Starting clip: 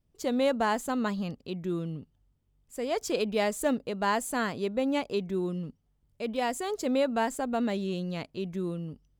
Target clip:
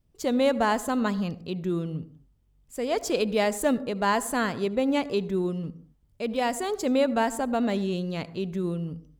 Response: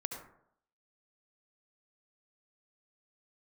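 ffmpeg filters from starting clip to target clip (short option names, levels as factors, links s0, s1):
-filter_complex "[0:a]asplit=2[s0][s1];[1:a]atrim=start_sample=2205,afade=t=out:st=0.3:d=0.01,atrim=end_sample=13671,lowshelf=f=200:g=10[s2];[s1][s2]afir=irnorm=-1:irlink=0,volume=0.237[s3];[s0][s3]amix=inputs=2:normalize=0,volume=1.19"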